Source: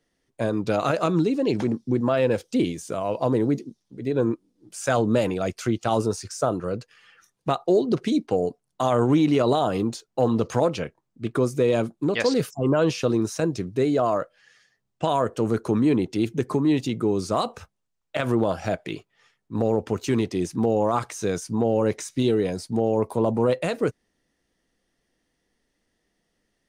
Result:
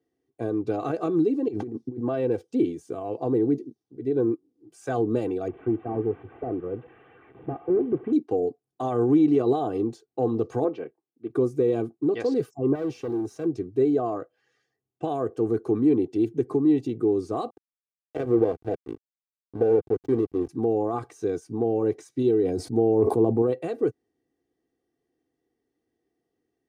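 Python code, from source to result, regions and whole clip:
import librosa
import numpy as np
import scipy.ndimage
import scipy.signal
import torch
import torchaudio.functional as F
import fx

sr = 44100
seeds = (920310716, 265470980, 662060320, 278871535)

y = fx.chain(x, sr, fx.notch(hz=2200.0, q=15.0),
    fx.over_compress(threshold_db=-28.0, ratio=-0.5), at=(1.48, 1.98))
y = fx.chain(y, sr, fx.delta_mod(bps=16000, step_db=-35.5),
    fx.lowpass(hz=1600.0, slope=6), at=(5.48, 8.13))
y = fx.chain(y, sr, fx.bandpass_edges(low_hz=250.0, high_hz=2800.0),
    fx.band_widen(depth_pct=40), at=(10.64, 11.3))
y = fx.chain(y, sr, fx.tube_stage(drive_db=23.0, bias=0.3),
    fx.quant_float(bits=4), at=(12.75, 13.46))
y = fx.chain(y, sr, fx.peak_eq(hz=490.0, db=11.0, octaves=0.3),
    fx.backlash(play_db=-20.5), at=(17.5, 20.49))
y = fx.chain(y, sr, fx.low_shelf(hz=470.0, db=4.5),
    fx.sustainer(db_per_s=24.0), at=(22.43, 23.42))
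y = scipy.signal.sosfilt(scipy.signal.butter(2, 160.0, 'highpass', fs=sr, output='sos'), y)
y = fx.tilt_shelf(y, sr, db=10.0, hz=800.0)
y = y + 0.74 * np.pad(y, (int(2.6 * sr / 1000.0), 0))[:len(y)]
y = y * 10.0 ** (-8.5 / 20.0)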